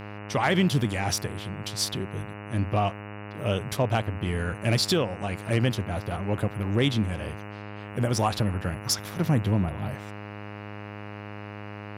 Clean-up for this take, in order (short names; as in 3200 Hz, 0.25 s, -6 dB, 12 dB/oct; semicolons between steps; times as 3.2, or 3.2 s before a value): clip repair -13 dBFS; de-hum 103.3 Hz, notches 28